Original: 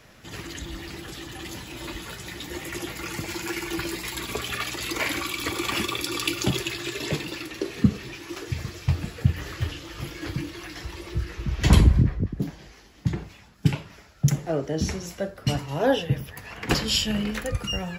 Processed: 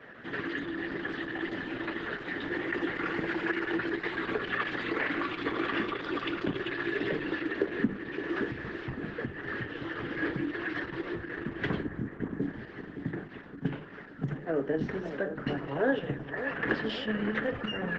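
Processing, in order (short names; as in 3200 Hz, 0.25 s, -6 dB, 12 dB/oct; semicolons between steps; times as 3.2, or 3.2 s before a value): notches 50/100/150/200/250/300/350 Hz; compressor 3:1, threshold -32 dBFS, peak gain reduction 16.5 dB; speaker cabinet 200–2700 Hz, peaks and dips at 270 Hz +5 dB, 430 Hz +4 dB, 630 Hz -3 dB, 910 Hz -4 dB, 1700 Hz +9 dB, 2400 Hz -9 dB; dark delay 0.566 s, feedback 56%, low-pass 1600 Hz, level -10 dB; gain +4 dB; Opus 10 kbps 48000 Hz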